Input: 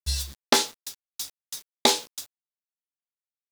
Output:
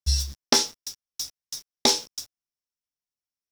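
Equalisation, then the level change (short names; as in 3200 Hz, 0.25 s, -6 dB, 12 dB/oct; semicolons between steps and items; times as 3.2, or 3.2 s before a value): low shelf 130 Hz +4.5 dB; low shelf 280 Hz +6.5 dB; bell 5500 Hz +14 dB 0.29 oct; -4.0 dB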